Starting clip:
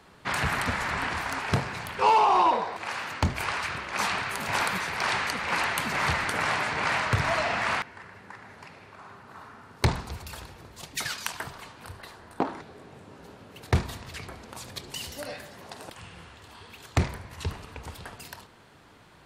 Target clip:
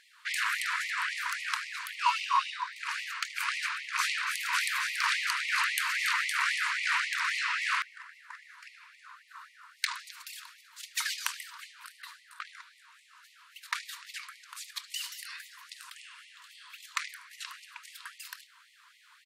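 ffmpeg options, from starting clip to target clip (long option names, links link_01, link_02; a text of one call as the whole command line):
ffmpeg -i in.wav -filter_complex "[0:a]asplit=3[link_01][link_02][link_03];[link_01]afade=type=out:start_time=4.26:duration=0.02[link_04];[link_02]asplit=5[link_05][link_06][link_07][link_08][link_09];[link_06]adelay=281,afreqshift=94,volume=-9.5dB[link_10];[link_07]adelay=562,afreqshift=188,volume=-19.1dB[link_11];[link_08]adelay=843,afreqshift=282,volume=-28.8dB[link_12];[link_09]adelay=1124,afreqshift=376,volume=-38.4dB[link_13];[link_05][link_10][link_11][link_12][link_13]amix=inputs=5:normalize=0,afade=type=in:start_time=4.26:duration=0.02,afade=type=out:start_time=6.77:duration=0.02[link_14];[link_03]afade=type=in:start_time=6.77:duration=0.02[link_15];[link_04][link_14][link_15]amix=inputs=3:normalize=0,afftfilt=real='re*gte(b*sr/1024,900*pow(1900/900,0.5+0.5*sin(2*PI*3.7*pts/sr)))':imag='im*gte(b*sr/1024,900*pow(1900/900,0.5+0.5*sin(2*PI*3.7*pts/sr)))':win_size=1024:overlap=0.75" out.wav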